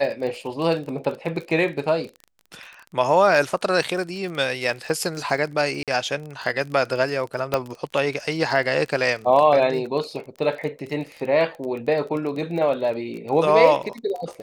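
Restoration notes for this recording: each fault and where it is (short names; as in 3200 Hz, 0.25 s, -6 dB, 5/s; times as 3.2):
crackle 29/s -30 dBFS
5.83–5.88 gap 47 ms
7.54 pop -7 dBFS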